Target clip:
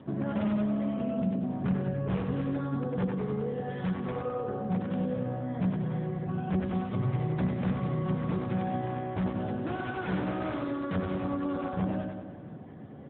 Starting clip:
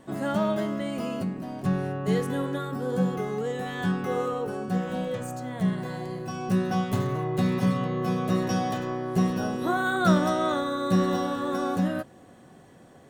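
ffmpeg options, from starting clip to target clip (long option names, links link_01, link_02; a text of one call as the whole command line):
ffmpeg -i in.wav -filter_complex "[0:a]lowshelf=frequency=140:gain=-4.5,acompressor=threshold=-39dB:ratio=2.5,aresample=16000,aeval=exprs='(mod(28.2*val(0)+1,2)-1)/28.2':channel_layout=same,aresample=44100,aemphasis=mode=reproduction:type=riaa,asplit=2[link_01][link_02];[link_02]aecho=0:1:95|190|285|380|475|570|665|760:0.668|0.394|0.233|0.137|0.081|0.0478|0.0282|0.0166[link_03];[link_01][link_03]amix=inputs=2:normalize=0" -ar 8000 -c:a libopencore_amrnb -b:a 10200 out.amr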